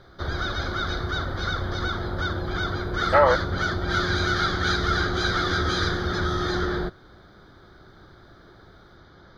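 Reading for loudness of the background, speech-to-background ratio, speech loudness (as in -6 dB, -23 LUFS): -26.0 LUFS, 5.0 dB, -21.0 LUFS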